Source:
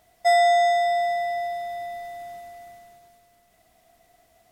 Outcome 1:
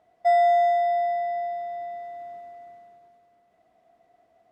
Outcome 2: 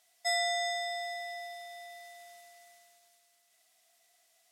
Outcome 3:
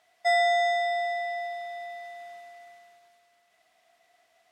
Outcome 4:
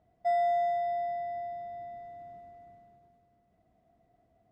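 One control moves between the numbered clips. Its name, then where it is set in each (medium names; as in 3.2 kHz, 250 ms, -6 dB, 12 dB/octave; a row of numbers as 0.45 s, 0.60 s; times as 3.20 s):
band-pass filter, frequency: 490 Hz, 6.8 kHz, 2.2 kHz, 150 Hz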